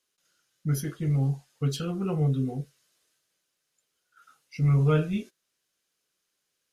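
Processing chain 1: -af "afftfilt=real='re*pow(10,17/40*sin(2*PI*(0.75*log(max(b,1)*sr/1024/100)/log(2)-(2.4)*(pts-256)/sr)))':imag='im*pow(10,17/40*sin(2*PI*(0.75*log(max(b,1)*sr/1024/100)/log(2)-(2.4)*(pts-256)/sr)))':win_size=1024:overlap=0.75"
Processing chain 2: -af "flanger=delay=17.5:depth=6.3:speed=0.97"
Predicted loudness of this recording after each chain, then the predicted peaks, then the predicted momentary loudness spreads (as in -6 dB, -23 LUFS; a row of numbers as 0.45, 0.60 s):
-25.0, -29.5 LUFS; -11.5, -14.5 dBFS; 16, 17 LU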